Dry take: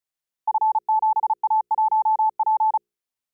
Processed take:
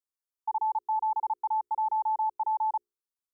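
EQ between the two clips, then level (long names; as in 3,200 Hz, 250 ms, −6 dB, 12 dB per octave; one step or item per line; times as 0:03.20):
phaser with its sweep stopped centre 630 Hz, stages 6
−6.5 dB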